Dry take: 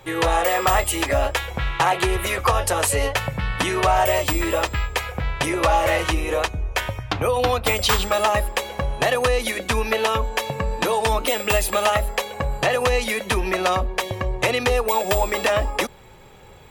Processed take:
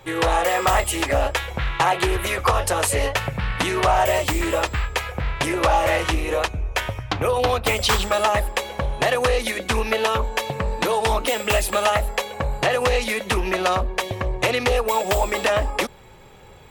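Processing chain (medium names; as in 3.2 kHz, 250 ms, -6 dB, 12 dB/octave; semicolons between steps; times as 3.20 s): loudspeaker Doppler distortion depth 0.3 ms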